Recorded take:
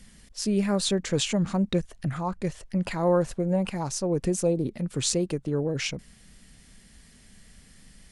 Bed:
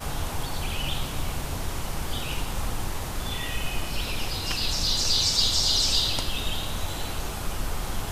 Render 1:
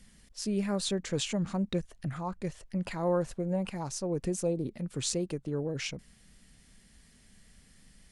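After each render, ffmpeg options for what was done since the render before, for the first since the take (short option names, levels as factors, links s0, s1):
-af "volume=0.501"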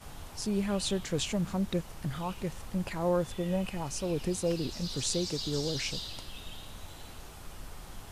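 -filter_complex "[1:a]volume=0.168[s0];[0:a][s0]amix=inputs=2:normalize=0"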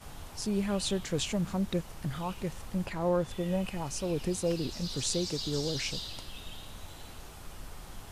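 -filter_complex "[0:a]asettb=1/sr,asplit=3[s0][s1][s2];[s0]atrim=end=2.864[s3];[s1]atrim=start=2.86:end=3.31,asetpts=PTS-STARTPTS,afade=t=in:d=0.004:c=qsin,afade=t=out:st=0.446:d=0.004:c=qsin,highshelf=f=6300:g=-6.5[s4];[s2]atrim=start=3.306[s5];[s3][s4]acrossfade=d=0.004:c1=hsin:c2=qsin[s6];[s6][s5]acrossfade=d=0.004:c1=qsin:c2=hsin"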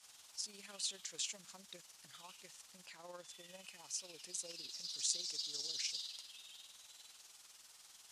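-af "bandpass=f=6200:t=q:w=1.1:csg=0,tremolo=f=20:d=0.519"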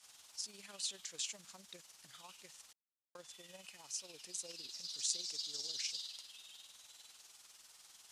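-filter_complex "[0:a]asplit=3[s0][s1][s2];[s0]atrim=end=2.73,asetpts=PTS-STARTPTS,afade=t=out:st=2.726:d=0.004:c=hsin[s3];[s1]atrim=start=2.73:end=3.15,asetpts=PTS-STARTPTS,volume=0[s4];[s2]atrim=start=3.15,asetpts=PTS-STARTPTS,afade=t=in:d=0.004:c=hsin[s5];[s3][s4][s5]concat=n=3:v=0:a=1"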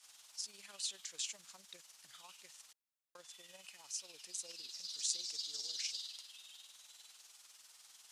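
-af "lowshelf=f=480:g=-9.5"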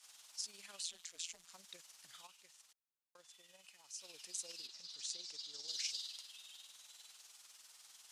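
-filter_complex "[0:a]asettb=1/sr,asplit=3[s0][s1][s2];[s0]atrim=end=0.834[s3];[s1]atrim=start=0.83:end=1.52,asetpts=PTS-STARTPTS,afade=t=in:d=0.004:c=qsin,afade=t=out:st=0.686:d=0.004:c=qsin,tremolo=f=170:d=0.947[s4];[s2]atrim=start=1.516[s5];[s3][s4]acrossfade=d=0.004:c1=hsin:c2=qsin[s6];[s6][s5]acrossfade=d=0.004:c1=qsin:c2=hsin,asettb=1/sr,asplit=3[s7][s8][s9];[s7]atrim=end=4.674[s10];[s8]atrim=start=4.67:end=5.68,asetpts=PTS-STARTPTS,afade=t=in:d=0.004:c=qsin,afade=t=out:st=1.006:d=0.004:c=qsin,lowpass=f=2700:p=1[s11];[s9]atrim=start=5.676[s12];[s10][s11]acrossfade=d=0.004:c1=hsin:c2=qsin[s13];[s13][s12]acrossfade=d=0.004:c1=qsin:c2=hsin,asplit=3[s14][s15][s16];[s14]atrim=end=2.272[s17];[s15]atrim=start=2.268:end=4.012,asetpts=PTS-STARTPTS,volume=0.473[s18];[s16]atrim=start=4.008[s19];[s17][s18]acrossfade=d=0.004:c1=hsin:c2=hsin[s20];[s20][s19]acrossfade=d=0.004:c1=hsin:c2=hsin"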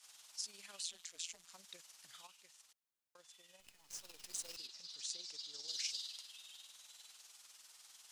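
-filter_complex "[0:a]asettb=1/sr,asplit=3[s0][s1][s2];[s0]atrim=end=3.604[s3];[s1]atrim=start=3.6:end=4.57,asetpts=PTS-STARTPTS,afade=t=in:d=0.004:c=qsin,afade=t=out:st=0.966:d=0.004:c=qsin,acrusher=bits=9:dc=4:mix=0:aa=0.000001[s4];[s2]atrim=start=4.566[s5];[s3][s4]acrossfade=d=0.004:c1=hsin:c2=qsin[s6];[s6][s5]acrossfade=d=0.004:c1=qsin:c2=hsin"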